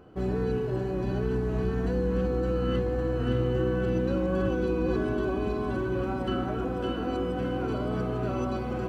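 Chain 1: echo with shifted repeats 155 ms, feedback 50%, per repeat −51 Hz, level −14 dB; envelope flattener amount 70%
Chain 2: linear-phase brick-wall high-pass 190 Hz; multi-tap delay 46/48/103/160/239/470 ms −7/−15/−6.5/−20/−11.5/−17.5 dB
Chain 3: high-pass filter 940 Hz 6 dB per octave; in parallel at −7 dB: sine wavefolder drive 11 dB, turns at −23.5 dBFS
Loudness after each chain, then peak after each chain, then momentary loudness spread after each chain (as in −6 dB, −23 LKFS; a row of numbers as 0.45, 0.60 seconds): −26.0, −28.5, −29.5 LKFS; −12.5, −14.0, −26.0 dBFS; 1, 4, 1 LU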